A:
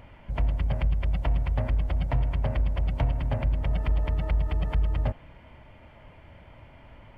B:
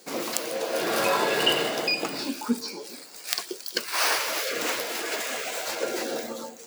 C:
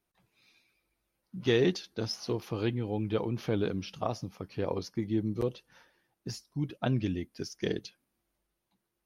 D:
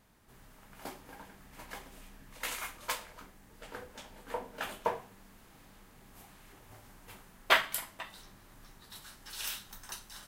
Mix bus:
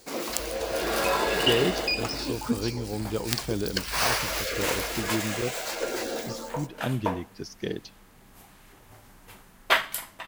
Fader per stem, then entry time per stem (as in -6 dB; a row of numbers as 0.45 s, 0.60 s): -19.0 dB, -1.5 dB, 0.0 dB, +3.0 dB; 0.00 s, 0.00 s, 0.00 s, 2.20 s